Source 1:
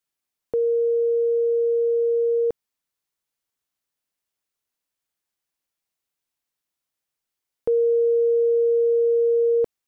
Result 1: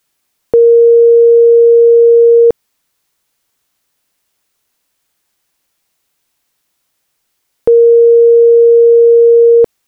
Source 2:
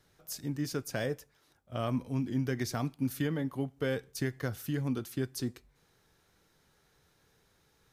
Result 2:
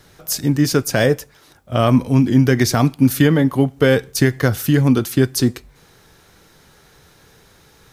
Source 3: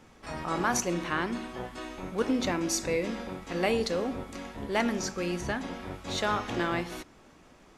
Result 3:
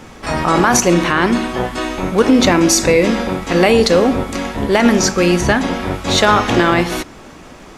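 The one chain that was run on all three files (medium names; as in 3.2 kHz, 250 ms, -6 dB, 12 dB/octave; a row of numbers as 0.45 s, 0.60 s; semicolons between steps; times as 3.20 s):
peak limiter -20.5 dBFS; peak normalisation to -2 dBFS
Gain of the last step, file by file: +18.5 dB, +18.5 dB, +18.5 dB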